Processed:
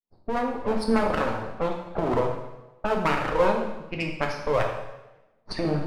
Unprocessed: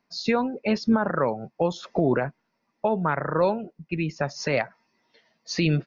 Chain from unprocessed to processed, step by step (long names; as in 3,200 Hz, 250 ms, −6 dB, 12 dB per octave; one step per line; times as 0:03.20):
fade in at the beginning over 0.54 s
auto-filter low-pass sine 2.6 Hz 470–5,500 Hz
half-wave rectification
low-pass that shuts in the quiet parts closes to 800 Hz, open at −23 dBFS
on a send: convolution reverb RT60 1.0 s, pre-delay 5 ms, DRR 1 dB